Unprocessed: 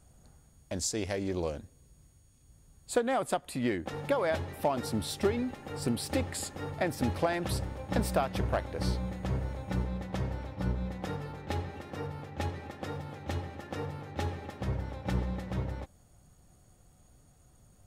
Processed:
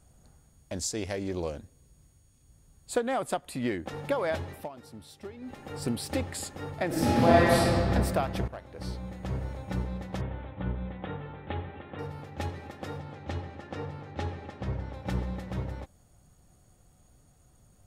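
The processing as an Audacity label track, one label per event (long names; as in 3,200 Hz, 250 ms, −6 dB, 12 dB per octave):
4.520000	5.570000	duck −14.5 dB, fades 0.17 s
6.860000	7.770000	thrown reverb, RT60 2.3 s, DRR −9.5 dB
8.480000	9.470000	fade in, from −14 dB
10.210000	11.990000	elliptic low-pass filter 3,500 Hz
13.000000	14.940000	high-frequency loss of the air 66 metres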